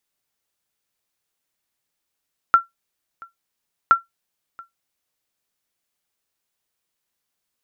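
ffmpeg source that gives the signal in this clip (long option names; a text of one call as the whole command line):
ffmpeg -f lavfi -i "aevalsrc='0.631*(sin(2*PI*1360*mod(t,1.37))*exp(-6.91*mod(t,1.37)/0.15)+0.0501*sin(2*PI*1360*max(mod(t,1.37)-0.68,0))*exp(-6.91*max(mod(t,1.37)-0.68,0)/0.15))':duration=2.74:sample_rate=44100" out.wav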